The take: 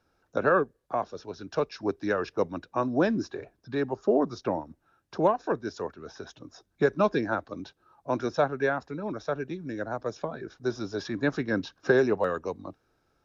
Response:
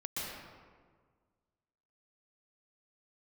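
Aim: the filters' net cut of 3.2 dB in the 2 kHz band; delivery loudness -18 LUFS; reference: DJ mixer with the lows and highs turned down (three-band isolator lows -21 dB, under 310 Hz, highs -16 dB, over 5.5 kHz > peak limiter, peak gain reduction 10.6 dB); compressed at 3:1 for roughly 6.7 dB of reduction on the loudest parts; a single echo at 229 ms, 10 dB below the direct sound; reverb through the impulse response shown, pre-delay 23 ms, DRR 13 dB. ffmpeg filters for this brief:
-filter_complex "[0:a]equalizer=f=2000:t=o:g=-4.5,acompressor=threshold=0.0447:ratio=3,aecho=1:1:229:0.316,asplit=2[s0][s1];[1:a]atrim=start_sample=2205,adelay=23[s2];[s1][s2]afir=irnorm=-1:irlink=0,volume=0.158[s3];[s0][s3]amix=inputs=2:normalize=0,acrossover=split=310 5500:gain=0.0891 1 0.158[s4][s5][s6];[s4][s5][s6]amix=inputs=3:normalize=0,volume=12.6,alimiter=limit=0.447:level=0:latency=1"

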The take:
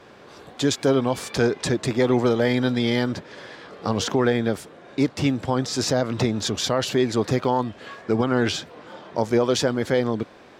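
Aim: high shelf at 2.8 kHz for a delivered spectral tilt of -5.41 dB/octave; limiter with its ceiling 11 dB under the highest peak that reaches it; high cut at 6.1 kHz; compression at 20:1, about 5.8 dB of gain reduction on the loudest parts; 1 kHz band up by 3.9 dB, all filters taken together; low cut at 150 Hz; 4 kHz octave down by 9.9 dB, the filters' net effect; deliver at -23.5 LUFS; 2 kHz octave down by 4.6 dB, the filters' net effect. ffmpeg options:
-af "highpass=150,lowpass=6100,equalizer=f=1000:t=o:g=7,equalizer=f=2000:t=o:g=-6,highshelf=f=2800:g=-4.5,equalizer=f=4000:t=o:g=-6.5,acompressor=threshold=0.1:ratio=20,volume=2.82,alimiter=limit=0.237:level=0:latency=1"

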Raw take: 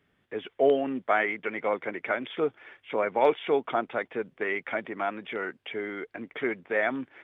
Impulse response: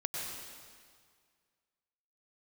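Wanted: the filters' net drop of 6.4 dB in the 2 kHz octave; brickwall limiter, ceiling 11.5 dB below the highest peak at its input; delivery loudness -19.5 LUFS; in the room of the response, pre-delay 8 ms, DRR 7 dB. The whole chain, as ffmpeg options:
-filter_complex "[0:a]equalizer=f=2000:t=o:g=-8,alimiter=limit=0.0841:level=0:latency=1,asplit=2[s0][s1];[1:a]atrim=start_sample=2205,adelay=8[s2];[s1][s2]afir=irnorm=-1:irlink=0,volume=0.316[s3];[s0][s3]amix=inputs=2:normalize=0,volume=5.01"

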